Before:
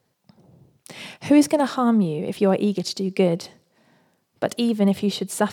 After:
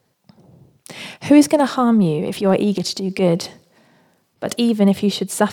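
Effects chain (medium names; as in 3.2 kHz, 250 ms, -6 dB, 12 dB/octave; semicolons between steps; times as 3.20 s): 1.80–4.56 s: transient shaper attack -8 dB, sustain +4 dB; trim +4.5 dB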